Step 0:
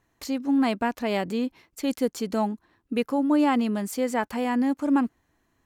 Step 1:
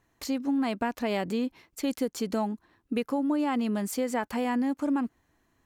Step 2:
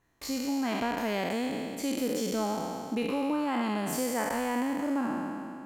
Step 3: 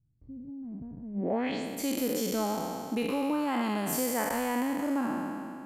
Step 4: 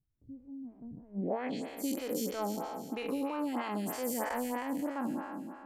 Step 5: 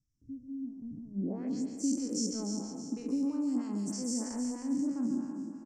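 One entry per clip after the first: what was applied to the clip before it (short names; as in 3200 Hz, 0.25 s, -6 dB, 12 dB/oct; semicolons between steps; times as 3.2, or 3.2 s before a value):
compressor, threshold -24 dBFS, peak gain reduction 7 dB
spectral trails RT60 2.41 s; gain -4.5 dB
low-pass sweep 130 Hz -> 13000 Hz, 1.13–1.68
photocell phaser 3.1 Hz; gain -2 dB
EQ curve 170 Hz 0 dB, 270 Hz +5 dB, 500 Hz -10 dB, 720 Hz -15 dB, 1100 Hz -14 dB, 3700 Hz -21 dB, 5500 Hz +12 dB, 8400 Hz +2 dB, 12000 Hz -28 dB; outdoor echo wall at 24 m, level -7 dB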